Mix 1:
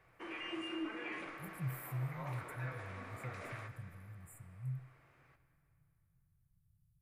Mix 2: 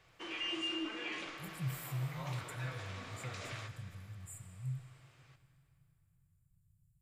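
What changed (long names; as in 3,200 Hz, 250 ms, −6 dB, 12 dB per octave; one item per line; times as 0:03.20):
speech: send +11.0 dB
master: add flat-topped bell 4,700 Hz +13 dB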